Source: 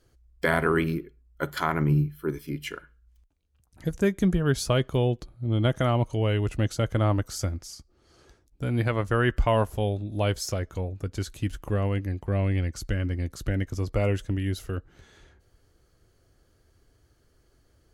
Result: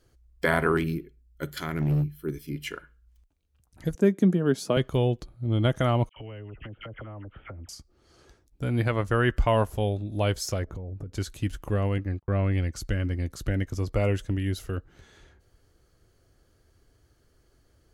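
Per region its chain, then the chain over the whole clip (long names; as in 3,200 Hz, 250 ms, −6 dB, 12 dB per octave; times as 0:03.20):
0:00.77–0:02.56: parametric band 940 Hz −14 dB 1.4 octaves + hard clipping −20 dBFS
0:03.95–0:04.77: high-pass filter 190 Hz 24 dB per octave + tilt shelving filter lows +6 dB, about 640 Hz
0:06.09–0:07.69: Butterworth low-pass 3,100 Hz 96 dB per octave + all-pass dispersion lows, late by 72 ms, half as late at 1,500 Hz + downward compressor 10 to 1, threshold −37 dBFS
0:10.64–0:11.13: tilt shelving filter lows +10 dB, about 1,300 Hz + downward compressor 10 to 1, threshold −33 dBFS
0:11.98–0:12.53: noise gate −36 dBFS, range −31 dB + low-pass filter 2,900 Hz 6 dB per octave + parametric band 1,300 Hz +6.5 dB 0.52 octaves
whole clip: no processing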